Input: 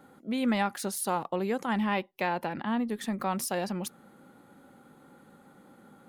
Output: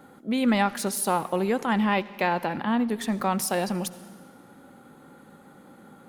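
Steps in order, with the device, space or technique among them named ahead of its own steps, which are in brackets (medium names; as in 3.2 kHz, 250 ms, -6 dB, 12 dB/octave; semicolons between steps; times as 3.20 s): saturated reverb return (on a send at -14 dB: reverberation RT60 1.5 s, pre-delay 55 ms + saturation -28.5 dBFS, distortion -11 dB); on the sum: trim +5 dB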